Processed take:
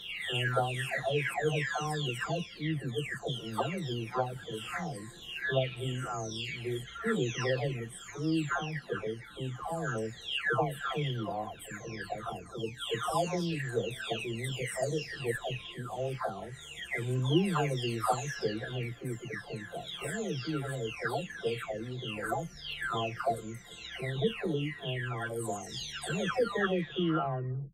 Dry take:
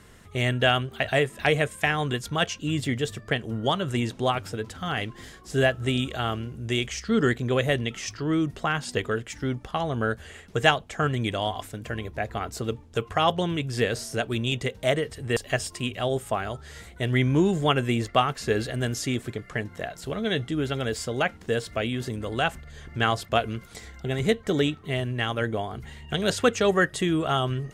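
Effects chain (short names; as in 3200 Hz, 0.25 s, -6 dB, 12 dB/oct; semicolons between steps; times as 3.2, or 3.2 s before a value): spectral delay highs early, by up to 0.925 s; gain -5 dB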